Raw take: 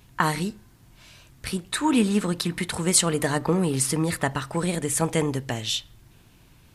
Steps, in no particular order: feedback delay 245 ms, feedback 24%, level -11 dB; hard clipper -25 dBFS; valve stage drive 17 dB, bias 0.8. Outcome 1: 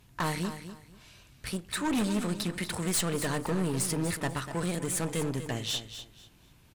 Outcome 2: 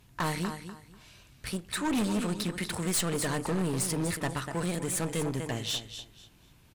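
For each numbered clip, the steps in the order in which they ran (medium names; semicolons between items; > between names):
valve stage > hard clipper > feedback delay; feedback delay > valve stage > hard clipper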